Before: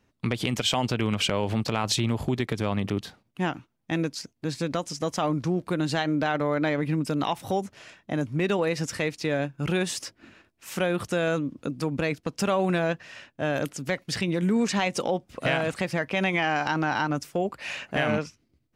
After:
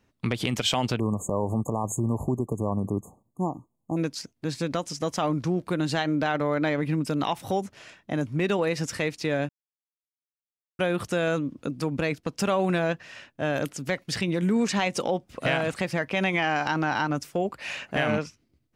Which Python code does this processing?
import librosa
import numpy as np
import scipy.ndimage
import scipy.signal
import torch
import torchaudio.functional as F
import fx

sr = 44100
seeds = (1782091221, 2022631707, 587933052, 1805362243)

y = fx.brickwall_bandstop(x, sr, low_hz=1200.0, high_hz=6400.0, at=(0.98, 3.96), fade=0.02)
y = fx.edit(y, sr, fx.silence(start_s=9.49, length_s=1.3), tone=tone)